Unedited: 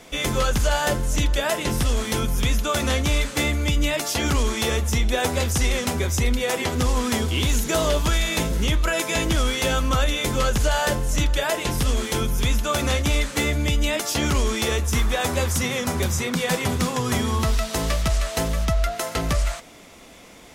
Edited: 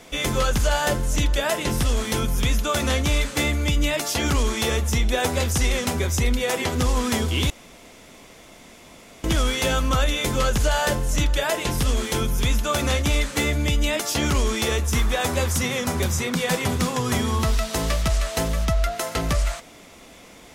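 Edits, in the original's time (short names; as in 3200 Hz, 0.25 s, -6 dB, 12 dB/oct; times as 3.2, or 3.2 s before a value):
7.5–9.24 room tone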